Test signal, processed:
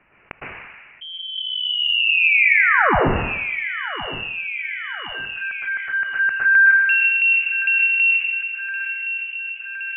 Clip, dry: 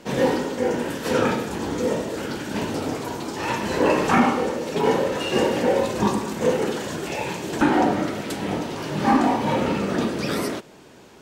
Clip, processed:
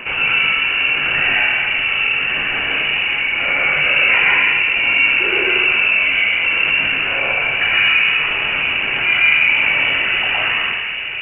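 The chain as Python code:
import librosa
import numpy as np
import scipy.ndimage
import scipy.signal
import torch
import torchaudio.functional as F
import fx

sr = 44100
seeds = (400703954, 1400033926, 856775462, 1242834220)

p1 = scipy.signal.sosfilt(scipy.signal.butter(2, 490.0, 'highpass', fs=sr, output='sos'), x)
p2 = fx.peak_eq(p1, sr, hz=880.0, db=4.0, octaves=0.47)
p3 = p2 + fx.echo_filtered(p2, sr, ms=1067, feedback_pct=70, hz=1300.0, wet_db=-19.0, dry=0)
p4 = fx.rev_plate(p3, sr, seeds[0], rt60_s=1.1, hf_ratio=0.55, predelay_ms=100, drr_db=-5.0)
p5 = fx.freq_invert(p4, sr, carrier_hz=3200)
p6 = fx.env_flatten(p5, sr, amount_pct=50)
y = F.gain(torch.from_numpy(p6), -1.5).numpy()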